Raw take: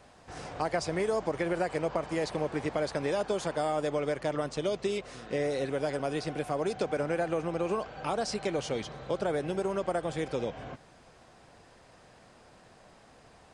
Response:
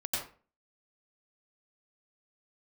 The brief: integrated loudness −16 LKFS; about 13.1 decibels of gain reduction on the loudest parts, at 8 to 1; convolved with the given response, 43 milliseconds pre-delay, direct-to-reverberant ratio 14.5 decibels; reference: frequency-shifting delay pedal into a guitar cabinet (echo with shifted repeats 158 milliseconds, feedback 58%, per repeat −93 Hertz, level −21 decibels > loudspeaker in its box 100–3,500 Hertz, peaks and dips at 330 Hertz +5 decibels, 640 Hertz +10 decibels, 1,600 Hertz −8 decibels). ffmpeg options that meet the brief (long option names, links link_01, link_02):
-filter_complex "[0:a]acompressor=threshold=-40dB:ratio=8,asplit=2[link_01][link_02];[1:a]atrim=start_sample=2205,adelay=43[link_03];[link_02][link_03]afir=irnorm=-1:irlink=0,volume=-19.5dB[link_04];[link_01][link_04]amix=inputs=2:normalize=0,asplit=6[link_05][link_06][link_07][link_08][link_09][link_10];[link_06]adelay=158,afreqshift=-93,volume=-21dB[link_11];[link_07]adelay=316,afreqshift=-186,volume=-25.7dB[link_12];[link_08]adelay=474,afreqshift=-279,volume=-30.5dB[link_13];[link_09]adelay=632,afreqshift=-372,volume=-35.2dB[link_14];[link_10]adelay=790,afreqshift=-465,volume=-39.9dB[link_15];[link_05][link_11][link_12][link_13][link_14][link_15]amix=inputs=6:normalize=0,highpass=100,equalizer=frequency=330:width_type=q:width=4:gain=5,equalizer=frequency=640:width_type=q:width=4:gain=10,equalizer=frequency=1600:width_type=q:width=4:gain=-8,lowpass=frequency=3500:width=0.5412,lowpass=frequency=3500:width=1.3066,volume=24dB"